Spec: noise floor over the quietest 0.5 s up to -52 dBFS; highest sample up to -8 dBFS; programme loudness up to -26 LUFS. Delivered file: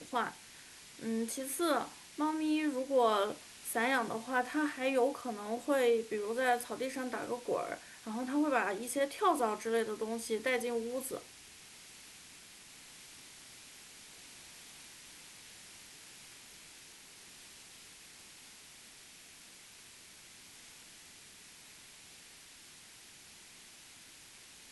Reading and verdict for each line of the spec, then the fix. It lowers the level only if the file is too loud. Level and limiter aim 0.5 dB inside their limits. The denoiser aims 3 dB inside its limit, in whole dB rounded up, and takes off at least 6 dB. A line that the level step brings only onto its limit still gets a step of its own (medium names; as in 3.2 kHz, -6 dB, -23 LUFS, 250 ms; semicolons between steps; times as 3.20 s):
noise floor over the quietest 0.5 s -56 dBFS: pass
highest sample -17.5 dBFS: pass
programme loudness -34.0 LUFS: pass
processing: none needed